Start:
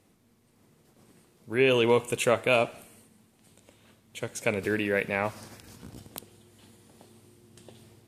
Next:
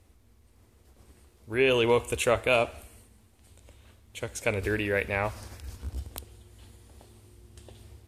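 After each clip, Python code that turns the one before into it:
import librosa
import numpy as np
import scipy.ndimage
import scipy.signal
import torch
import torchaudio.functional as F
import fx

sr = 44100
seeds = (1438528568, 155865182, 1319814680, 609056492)

y = fx.low_shelf_res(x, sr, hz=100.0, db=13.5, q=3.0)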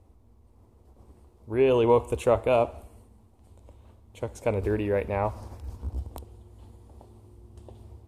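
y = fx.curve_eq(x, sr, hz=(650.0, 960.0, 1600.0), db=(0, 2, -13))
y = F.gain(torch.from_numpy(y), 3.0).numpy()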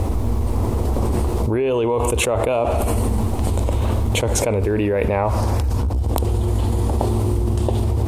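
y = fx.env_flatten(x, sr, amount_pct=100)
y = F.gain(torch.from_numpy(y), -2.0).numpy()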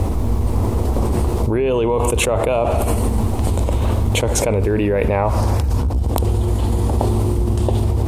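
y = fx.add_hum(x, sr, base_hz=50, snr_db=11)
y = F.gain(torch.from_numpy(y), 1.5).numpy()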